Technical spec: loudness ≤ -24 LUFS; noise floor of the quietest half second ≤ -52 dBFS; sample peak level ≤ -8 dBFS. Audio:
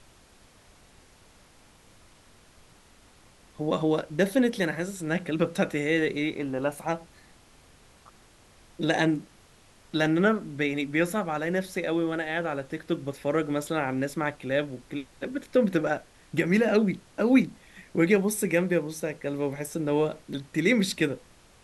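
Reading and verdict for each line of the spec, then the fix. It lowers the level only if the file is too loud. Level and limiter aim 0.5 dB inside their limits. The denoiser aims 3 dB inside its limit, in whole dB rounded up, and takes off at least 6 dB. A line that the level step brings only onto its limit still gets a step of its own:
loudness -27.5 LUFS: OK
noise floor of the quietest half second -56 dBFS: OK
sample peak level -8.5 dBFS: OK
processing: none

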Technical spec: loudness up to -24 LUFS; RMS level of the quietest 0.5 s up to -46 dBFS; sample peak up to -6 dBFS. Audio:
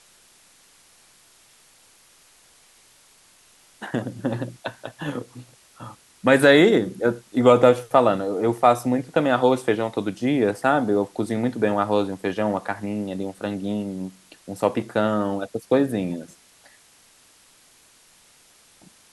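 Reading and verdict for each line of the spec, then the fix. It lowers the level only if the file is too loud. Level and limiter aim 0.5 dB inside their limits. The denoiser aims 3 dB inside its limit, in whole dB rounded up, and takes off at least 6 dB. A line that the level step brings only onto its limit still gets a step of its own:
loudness -21.5 LUFS: fail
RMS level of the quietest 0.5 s -55 dBFS: OK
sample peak -3.0 dBFS: fail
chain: gain -3 dB; limiter -6.5 dBFS

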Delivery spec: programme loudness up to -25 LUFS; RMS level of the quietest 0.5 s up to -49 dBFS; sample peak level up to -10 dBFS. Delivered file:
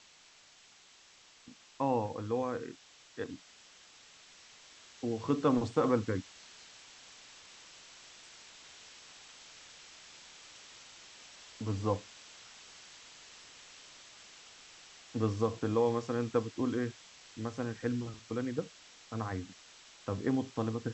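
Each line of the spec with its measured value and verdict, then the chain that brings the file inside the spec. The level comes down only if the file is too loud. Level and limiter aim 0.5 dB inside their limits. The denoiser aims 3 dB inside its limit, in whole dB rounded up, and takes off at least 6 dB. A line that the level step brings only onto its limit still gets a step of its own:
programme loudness -34.5 LUFS: OK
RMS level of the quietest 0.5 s -60 dBFS: OK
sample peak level -15.0 dBFS: OK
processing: none

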